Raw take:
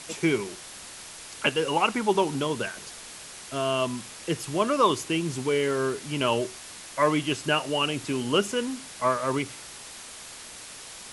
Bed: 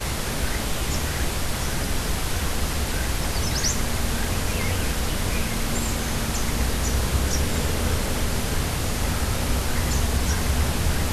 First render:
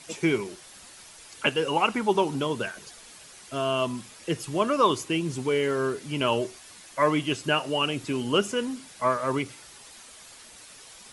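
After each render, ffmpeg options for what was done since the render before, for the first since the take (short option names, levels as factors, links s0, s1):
-af "afftdn=nr=8:nf=-43"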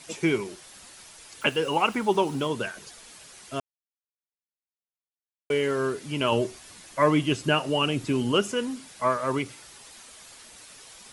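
-filter_complex "[0:a]asettb=1/sr,asplit=3[s0][s1][s2];[s0]atrim=end=1.414[s3];[s1]atrim=start=1.41:end=2.48,asetpts=PTS-STARTPTS,afade=t=in:d=0.004:c=qsin,afade=t=out:st=1.066:d=0.004:c=qsin,aeval=exprs='val(0)*gte(abs(val(0)),0.00531)':c=same[s4];[s2]atrim=start=2.476[s5];[s3][s4]acrossfade=d=0.004:c1=hsin:c2=qsin[s6];[s6][s5]acrossfade=d=0.004:c1=qsin:c2=hsin,asettb=1/sr,asplit=3[s7][s8][s9];[s7]atrim=end=6.324[s10];[s8]atrim=start=6.32:end=8.32,asetpts=PTS-STARTPTS,afade=t=in:d=0.004:c=qsin,afade=t=out:st=1.996:d=0.004:c=qsin,lowshelf=f=340:g=6[s11];[s9]atrim=start=8.316[s12];[s10][s11]acrossfade=d=0.004:c1=hsin:c2=qsin[s13];[s13][s12]acrossfade=d=0.004:c1=qsin:c2=hsin,asplit=3[s14][s15][s16];[s14]atrim=end=3.6,asetpts=PTS-STARTPTS,afade=t=out:st=3.596:d=0.004:c=hsin[s17];[s15]atrim=start=3.6:end=5.5,asetpts=PTS-STARTPTS,volume=0[s18];[s16]atrim=start=5.5,asetpts=PTS-STARTPTS,afade=t=in:d=0.004:c=hsin[s19];[s17][s18][s19]concat=n=3:v=0:a=1"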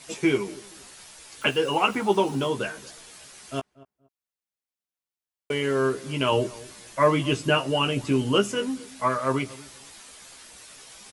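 -filter_complex "[0:a]asplit=2[s0][s1];[s1]adelay=15,volume=0.562[s2];[s0][s2]amix=inputs=2:normalize=0,asplit=2[s3][s4];[s4]adelay=235,lowpass=f=1000:p=1,volume=0.106,asplit=2[s5][s6];[s6]adelay=235,lowpass=f=1000:p=1,volume=0.24[s7];[s3][s5][s7]amix=inputs=3:normalize=0"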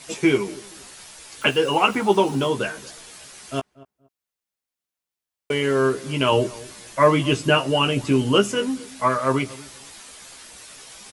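-af "volume=1.58"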